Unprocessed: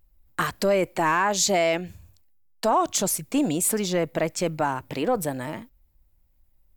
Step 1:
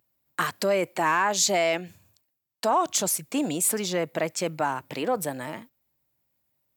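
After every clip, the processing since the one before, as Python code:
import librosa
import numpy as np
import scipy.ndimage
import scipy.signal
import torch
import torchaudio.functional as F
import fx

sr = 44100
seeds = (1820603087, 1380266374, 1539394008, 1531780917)

y = scipy.signal.sosfilt(scipy.signal.butter(4, 110.0, 'highpass', fs=sr, output='sos'), x)
y = fx.low_shelf(y, sr, hz=450.0, db=-5.5)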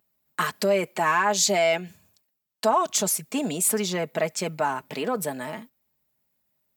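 y = x + 0.52 * np.pad(x, (int(4.7 * sr / 1000.0), 0))[:len(x)]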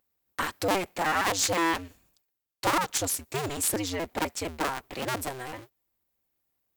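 y = fx.cycle_switch(x, sr, every=2, mode='inverted')
y = y * 10.0 ** (-4.5 / 20.0)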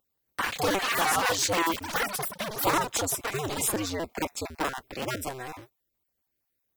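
y = fx.spec_dropout(x, sr, seeds[0], share_pct=25)
y = fx.echo_pitch(y, sr, ms=175, semitones=7, count=3, db_per_echo=-3.0)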